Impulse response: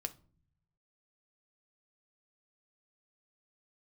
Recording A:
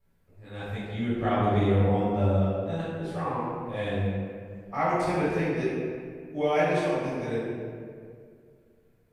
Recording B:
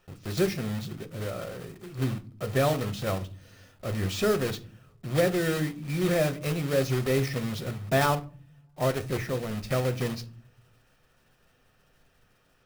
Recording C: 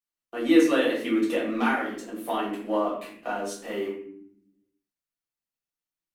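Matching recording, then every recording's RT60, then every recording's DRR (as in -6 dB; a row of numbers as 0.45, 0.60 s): B; 2.2 s, not exponential, 0.70 s; -12.5, 8.5, -7.0 dB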